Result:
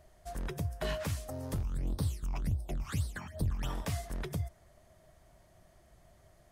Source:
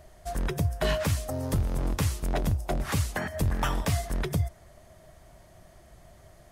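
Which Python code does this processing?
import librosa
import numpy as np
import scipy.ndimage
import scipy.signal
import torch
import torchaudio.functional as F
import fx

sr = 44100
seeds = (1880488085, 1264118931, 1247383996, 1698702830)

y = fx.phaser_stages(x, sr, stages=8, low_hz=480.0, high_hz=2300.0, hz=fx.line((1.62, 1.1), (3.68, 3.7)), feedback_pct=50, at=(1.62, 3.68), fade=0.02)
y = F.gain(torch.from_numpy(y), -8.5).numpy()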